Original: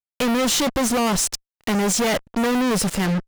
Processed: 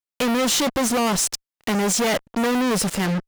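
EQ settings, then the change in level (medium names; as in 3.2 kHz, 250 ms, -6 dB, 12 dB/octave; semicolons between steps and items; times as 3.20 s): bass shelf 91 Hz -7.5 dB; 0.0 dB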